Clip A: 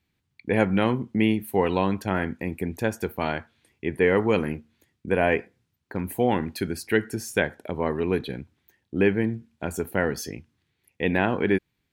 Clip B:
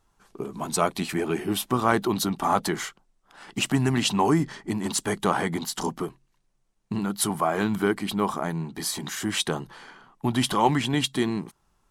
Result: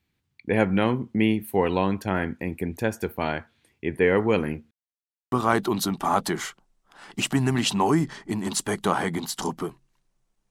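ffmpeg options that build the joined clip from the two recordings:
-filter_complex "[0:a]apad=whole_dur=10.5,atrim=end=10.5,asplit=2[s0][s1];[s0]atrim=end=4.71,asetpts=PTS-STARTPTS,afade=t=out:st=4.706:d=0.004:c=hsin[s2];[s1]atrim=start=4.71:end=5.32,asetpts=PTS-STARTPTS,volume=0[s3];[1:a]atrim=start=1.71:end=6.89,asetpts=PTS-STARTPTS,afade=t=in:d=0.004:c=hsin[s4];[s2][s3][s4]concat=n=3:v=0:a=1"

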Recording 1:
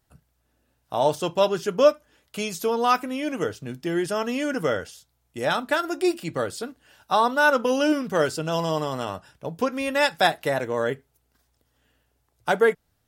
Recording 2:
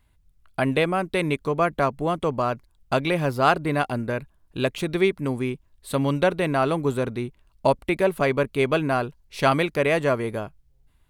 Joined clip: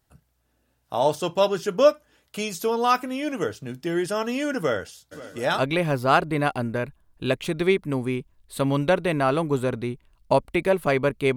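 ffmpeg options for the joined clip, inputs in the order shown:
-filter_complex "[0:a]asplit=3[s0][s1][s2];[s0]afade=t=out:st=5.11:d=0.02[s3];[s1]aecho=1:1:176|352|528|704|880|1056|1232:0.447|0.25|0.14|0.0784|0.0439|0.0246|0.0138,afade=t=in:st=5.11:d=0.02,afade=t=out:st=5.63:d=0.02[s4];[s2]afade=t=in:st=5.63:d=0.02[s5];[s3][s4][s5]amix=inputs=3:normalize=0,apad=whole_dur=11.36,atrim=end=11.36,atrim=end=5.63,asetpts=PTS-STARTPTS[s6];[1:a]atrim=start=2.89:end=8.7,asetpts=PTS-STARTPTS[s7];[s6][s7]acrossfade=d=0.08:c1=tri:c2=tri"

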